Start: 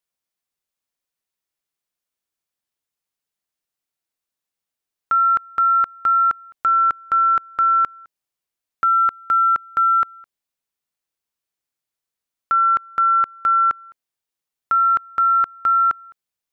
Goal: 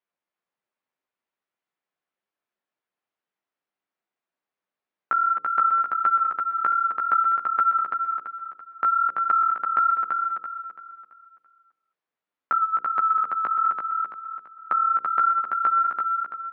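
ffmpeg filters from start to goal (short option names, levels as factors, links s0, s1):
-filter_complex "[0:a]bandreject=f=60:t=h:w=6,bandreject=f=120:t=h:w=6,bandreject=f=180:t=h:w=6,bandreject=f=240:t=h:w=6,bandreject=f=300:t=h:w=6,bandreject=f=360:t=h:w=6,bandreject=f=420:t=h:w=6,bandreject=f=480:t=h:w=6,bandreject=f=540:t=h:w=6,acompressor=threshold=0.0708:ratio=6,asplit=3[s0][s1][s2];[s0]afade=t=out:st=12.59:d=0.02[s3];[s1]afreqshift=-38,afade=t=in:st=12.59:d=0.02,afade=t=out:st=14.72:d=0.02[s4];[s2]afade=t=in:st=14.72:d=0.02[s5];[s3][s4][s5]amix=inputs=3:normalize=0,flanger=delay=9.8:depth=7.4:regen=2:speed=1.3:shape=sinusoidal,highpass=200,lowpass=2000,aecho=1:1:335|670|1005|1340|1675:0.631|0.233|0.0864|0.032|0.0118,volume=2"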